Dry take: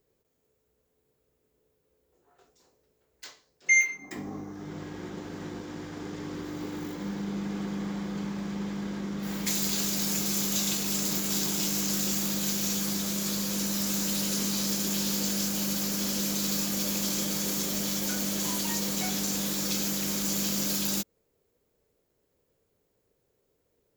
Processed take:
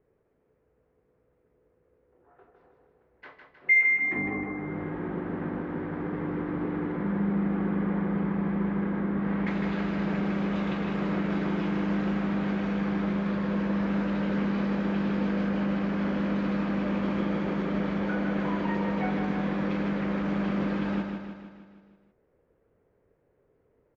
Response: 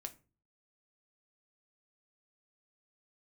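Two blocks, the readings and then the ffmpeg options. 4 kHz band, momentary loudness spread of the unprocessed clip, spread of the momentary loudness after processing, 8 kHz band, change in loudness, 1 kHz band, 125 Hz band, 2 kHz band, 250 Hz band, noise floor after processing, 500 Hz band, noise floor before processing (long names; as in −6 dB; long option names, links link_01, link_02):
−15.5 dB, 13 LU, 5 LU, below −35 dB, −0.5 dB, +6.5 dB, +5.5 dB, +3.0 dB, +5.5 dB, −70 dBFS, +6.5 dB, −75 dBFS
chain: -af "lowpass=frequency=2000:width=0.5412,lowpass=frequency=2000:width=1.3066,aecho=1:1:156|312|468|624|780|936|1092:0.531|0.297|0.166|0.0932|0.0522|0.0292|0.0164,volume=5dB"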